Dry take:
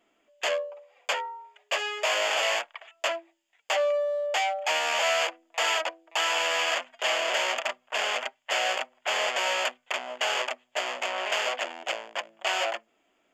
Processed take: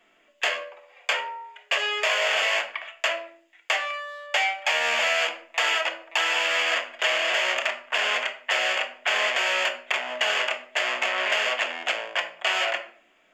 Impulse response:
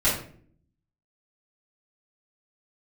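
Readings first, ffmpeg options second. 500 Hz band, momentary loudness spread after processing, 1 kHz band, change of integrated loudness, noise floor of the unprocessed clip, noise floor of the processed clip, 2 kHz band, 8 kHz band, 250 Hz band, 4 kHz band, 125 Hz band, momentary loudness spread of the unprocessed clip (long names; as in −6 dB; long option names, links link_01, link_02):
−1.0 dB, 6 LU, +0.5 dB, +3.5 dB, −71 dBFS, −62 dBFS, +5.5 dB, −1.0 dB, +1.5 dB, +3.5 dB, can't be measured, 8 LU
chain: -filter_complex "[0:a]equalizer=frequency=2000:width=0.54:gain=8,acrossover=split=460|990[link_01][link_02][link_03];[link_01]acompressor=threshold=-39dB:ratio=4[link_04];[link_02]acompressor=threshold=-40dB:ratio=4[link_05];[link_03]acompressor=threshold=-25dB:ratio=4[link_06];[link_04][link_05][link_06]amix=inputs=3:normalize=0,asplit=2[link_07][link_08];[1:a]atrim=start_sample=2205[link_09];[link_08][link_09]afir=irnorm=-1:irlink=0,volume=-17.5dB[link_10];[link_07][link_10]amix=inputs=2:normalize=0,volume=1dB"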